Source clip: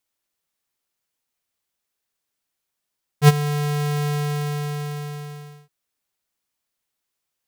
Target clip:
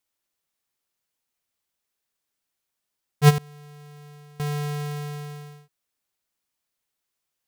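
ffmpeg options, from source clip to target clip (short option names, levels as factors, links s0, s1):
-filter_complex "[0:a]asettb=1/sr,asplit=3[s0][s1][s2];[s0]atrim=end=3.384[s3];[s1]atrim=start=3.38:end=4.4,asetpts=PTS-STARTPTS,afade=t=in:d=0.004:c=qsin,afade=t=out:st=1.016:d=0.004:c=qsin,agate=range=0.0224:threshold=0.251:ratio=3:detection=peak[s4];[s2]atrim=start=4.396[s5];[s3][s4]acrossfade=d=0.004:c1=hsin:c2=qsin[s6];[s6][s5]acrossfade=d=0.004:c1=qsin:c2=hsin,volume=0.841"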